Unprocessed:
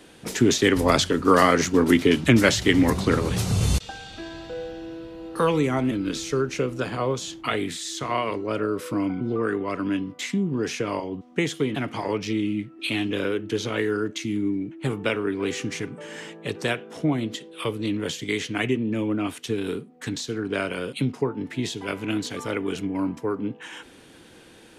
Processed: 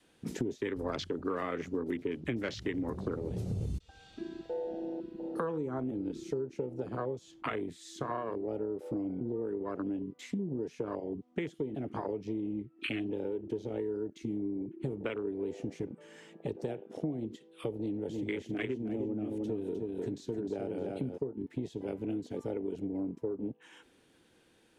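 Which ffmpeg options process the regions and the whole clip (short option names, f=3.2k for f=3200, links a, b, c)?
-filter_complex "[0:a]asettb=1/sr,asplit=3[a][b][c];[a]atrim=end=17.794[d];[b]atrim=start=17.79:end=21.18,asetpts=PTS-STARTPTS,afade=t=in:d=0.004:c=qsin,afade=t=out:st=3.386:d=0.004:c=qsin,volume=14.5dB,asoftclip=hard,volume=-14.5dB,aecho=1:1:307|614|921:0.596|0.125|0.0263,atrim=end_sample=149499[e];[c]atrim=start=21.176[f];[d][e]acrossfade=d=0.004:c1=hsin:c2=qsin[g];[g][f]acrossfade=d=0.004:c1=qsin:c2=hsin,afwtdn=0.0501,adynamicequalizer=threshold=0.02:dfrequency=400:dqfactor=1.8:tfrequency=400:tqfactor=1.8:attack=5:release=100:ratio=0.375:range=2.5:mode=boostabove:tftype=bell,acompressor=threshold=-33dB:ratio=6"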